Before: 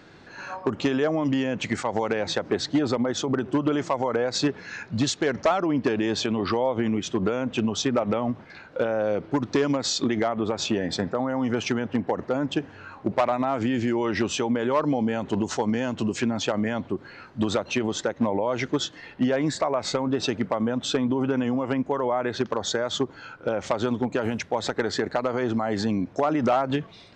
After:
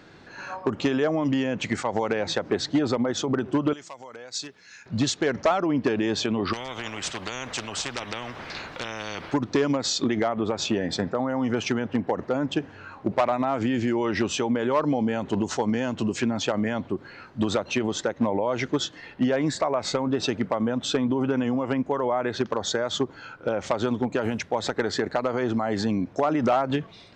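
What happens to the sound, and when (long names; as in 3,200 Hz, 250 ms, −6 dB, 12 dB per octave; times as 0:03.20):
0:03.73–0:04.86: first-order pre-emphasis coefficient 0.9
0:06.53–0:09.34: every bin compressed towards the loudest bin 4 to 1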